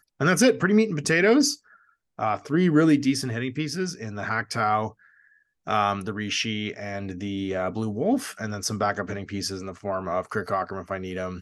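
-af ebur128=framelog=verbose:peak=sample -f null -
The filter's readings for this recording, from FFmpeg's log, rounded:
Integrated loudness:
  I:         -25.0 LUFS
  Threshold: -35.4 LUFS
Loudness range:
  LRA:         6.7 LU
  Threshold: -46.0 LUFS
  LRA low:   -28.6 LUFS
  LRA high:  -22.0 LUFS
Sample peak:
  Peak:       -7.1 dBFS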